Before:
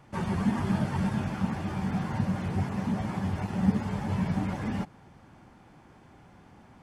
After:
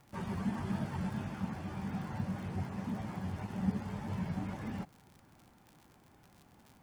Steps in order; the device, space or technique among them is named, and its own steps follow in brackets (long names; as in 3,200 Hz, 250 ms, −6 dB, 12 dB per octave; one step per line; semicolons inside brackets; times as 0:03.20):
vinyl LP (tape wow and flutter; surface crackle 78 per second −38 dBFS; white noise bed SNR 40 dB)
level −8.5 dB